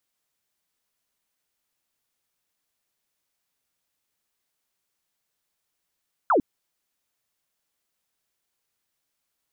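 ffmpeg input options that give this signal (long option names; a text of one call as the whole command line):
ffmpeg -f lavfi -i "aevalsrc='0.158*clip(t/0.002,0,1)*clip((0.1-t)/0.002,0,1)*sin(2*PI*1500*0.1/log(240/1500)*(exp(log(240/1500)*t/0.1)-1))':duration=0.1:sample_rate=44100" out.wav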